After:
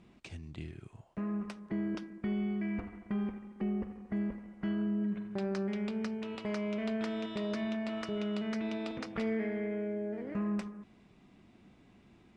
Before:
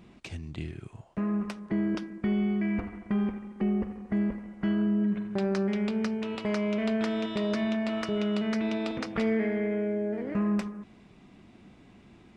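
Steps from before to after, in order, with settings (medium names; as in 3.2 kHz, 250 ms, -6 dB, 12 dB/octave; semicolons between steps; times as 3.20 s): steep low-pass 11 kHz; trim -6.5 dB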